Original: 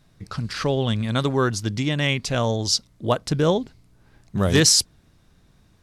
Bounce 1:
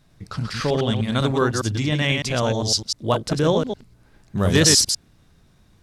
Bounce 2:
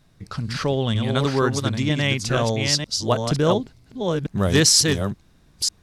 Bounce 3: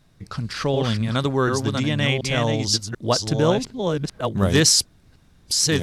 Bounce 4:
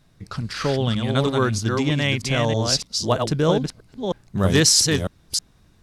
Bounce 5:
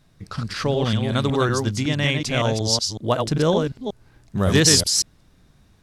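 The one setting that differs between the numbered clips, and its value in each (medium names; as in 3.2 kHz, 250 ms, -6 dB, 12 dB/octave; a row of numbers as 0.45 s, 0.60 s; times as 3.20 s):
chunks repeated in reverse, time: 101 ms, 474 ms, 737 ms, 317 ms, 186 ms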